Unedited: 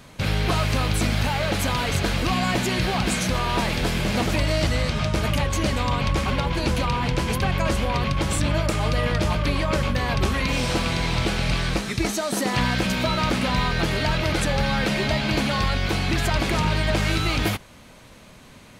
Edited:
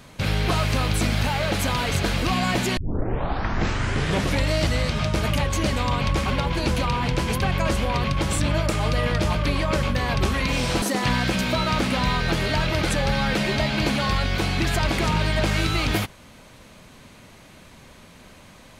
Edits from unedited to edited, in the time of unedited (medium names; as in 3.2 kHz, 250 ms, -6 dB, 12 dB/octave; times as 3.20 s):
2.77 s: tape start 1.75 s
10.82–12.33 s: delete